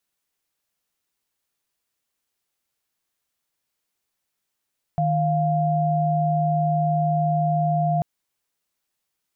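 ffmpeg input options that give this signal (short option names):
-f lavfi -i "aevalsrc='0.0891*(sin(2*PI*155.56*t)+sin(2*PI*698.46*t))':d=3.04:s=44100"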